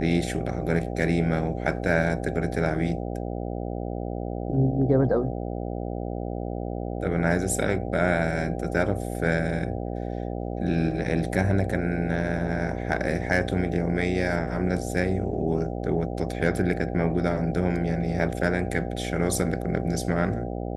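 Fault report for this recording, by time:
mains buzz 60 Hz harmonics 13 −31 dBFS

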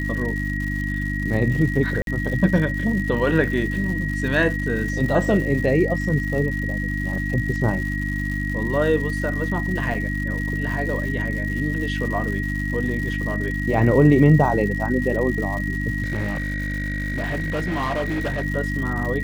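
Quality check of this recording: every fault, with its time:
surface crackle 220 per second −30 dBFS
mains hum 50 Hz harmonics 6 −26 dBFS
whistle 1,900 Hz −28 dBFS
0:02.02–0:02.07: drop-out 52 ms
0:09.94–0:09.95: drop-out 5.3 ms
0:16.02–0:18.44: clipping −20.5 dBFS

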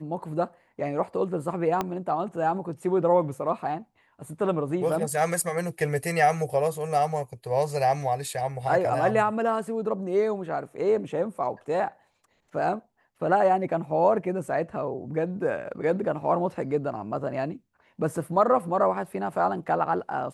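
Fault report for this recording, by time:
0:01.81: click −13 dBFS

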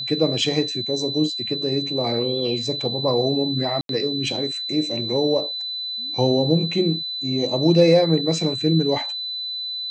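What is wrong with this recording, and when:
whistle 4,000 Hz −26 dBFS
0:03.81–0:03.89: drop-out 82 ms

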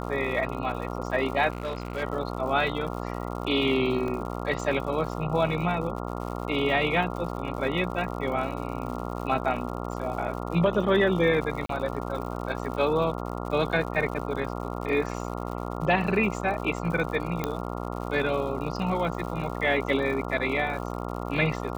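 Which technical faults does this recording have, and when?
mains buzz 60 Hz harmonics 23 −33 dBFS
surface crackle 130 per second −36 dBFS
0:01.50–0:02.03: clipping −26 dBFS
0:04.08: drop-out 2.3 ms
0:11.66–0:11.69: drop-out 33 ms
0:17.44: click −13 dBFS

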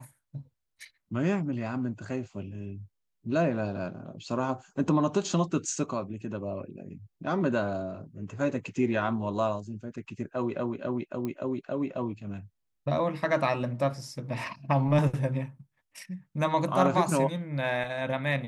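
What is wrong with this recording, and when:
0:11.25: click −21 dBFS

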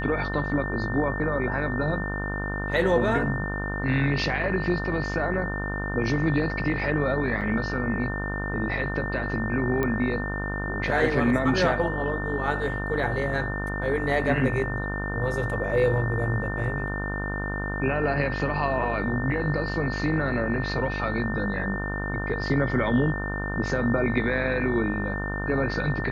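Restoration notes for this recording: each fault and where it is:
mains buzz 50 Hz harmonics 31 −31 dBFS
whistle 1,800 Hz −32 dBFS
0:07.41–0:07.42: drop-out 6.3 ms
0:09.83: click −14 dBFS

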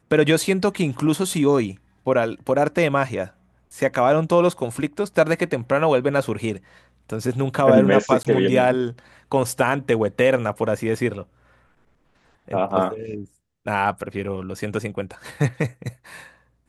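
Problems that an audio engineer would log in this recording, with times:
0:08.23–0:08.25: drop-out 17 ms

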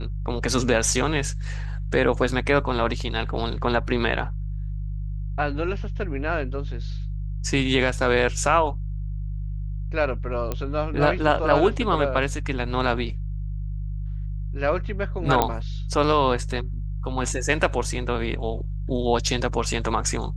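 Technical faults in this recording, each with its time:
mains hum 50 Hz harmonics 3 −29 dBFS
0:10.52: click −13 dBFS
0:15.42: click −6 dBFS

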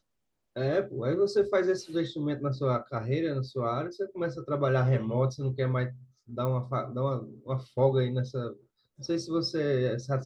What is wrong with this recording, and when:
0:06.45: click −21 dBFS

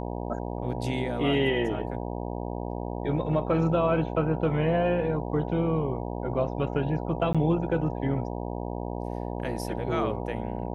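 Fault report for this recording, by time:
mains buzz 60 Hz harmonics 16 −33 dBFS
0:07.33–0:07.35: drop-out 16 ms

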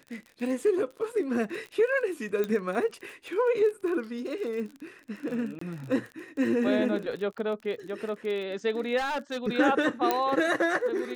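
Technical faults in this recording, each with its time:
surface crackle 32 per second −36 dBFS
0:02.44: click −18 dBFS
0:05.59–0:05.61: drop-out 24 ms
0:08.97–0:09.45: clipping −27 dBFS
0:10.11: click −10 dBFS

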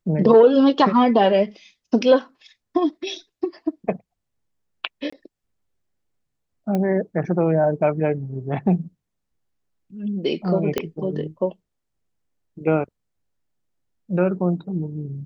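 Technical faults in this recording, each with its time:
0:05.10–0:05.12: drop-out 25 ms
0:06.75: click −13 dBFS
0:10.78: click −8 dBFS

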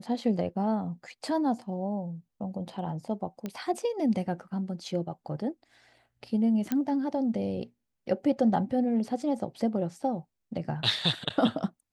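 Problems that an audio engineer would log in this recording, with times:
0:03.46: click −21 dBFS
0:06.72: click −15 dBFS

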